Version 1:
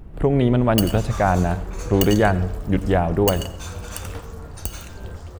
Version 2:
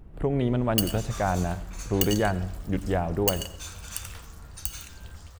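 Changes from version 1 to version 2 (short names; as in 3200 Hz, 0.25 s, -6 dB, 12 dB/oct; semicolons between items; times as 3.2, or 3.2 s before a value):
speech -7.5 dB; background: add passive tone stack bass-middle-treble 10-0-10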